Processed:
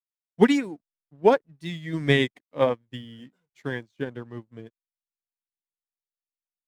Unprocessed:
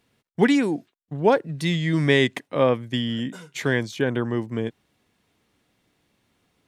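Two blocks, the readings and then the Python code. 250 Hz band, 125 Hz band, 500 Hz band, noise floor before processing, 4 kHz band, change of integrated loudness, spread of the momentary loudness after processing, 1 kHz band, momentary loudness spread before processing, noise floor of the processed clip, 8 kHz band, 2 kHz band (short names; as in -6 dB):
-4.0 dB, -6.0 dB, -2.0 dB, -75 dBFS, -5.0 dB, -1.5 dB, 19 LU, -1.5 dB, 12 LU, under -85 dBFS, n/a, -4.5 dB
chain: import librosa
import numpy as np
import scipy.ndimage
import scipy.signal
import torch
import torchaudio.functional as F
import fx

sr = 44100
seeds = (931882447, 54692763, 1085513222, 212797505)

y = fx.spec_quant(x, sr, step_db=15)
y = fx.backlash(y, sr, play_db=-42.5)
y = fx.upward_expand(y, sr, threshold_db=-37.0, expansion=2.5)
y = y * 10.0 ** (3.0 / 20.0)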